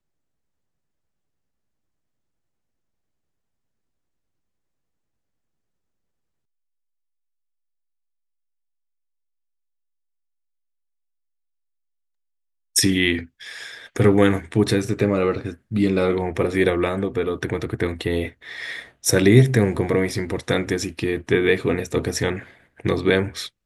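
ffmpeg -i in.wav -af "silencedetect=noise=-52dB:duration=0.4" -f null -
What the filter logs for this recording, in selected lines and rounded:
silence_start: 0.00
silence_end: 12.75 | silence_duration: 12.75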